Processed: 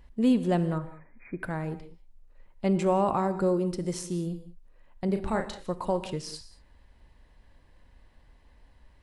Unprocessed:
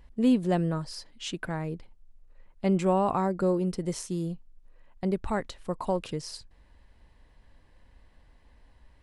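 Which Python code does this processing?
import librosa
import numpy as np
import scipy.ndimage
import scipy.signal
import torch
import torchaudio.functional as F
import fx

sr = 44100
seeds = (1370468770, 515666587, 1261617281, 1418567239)

y = fx.brickwall_lowpass(x, sr, high_hz=2500.0, at=(0.78, 1.4))
y = fx.doubler(y, sr, ms=36.0, db=-6.5, at=(5.05, 5.6))
y = fx.rev_gated(y, sr, seeds[0], gate_ms=220, shape='flat', drr_db=12.0)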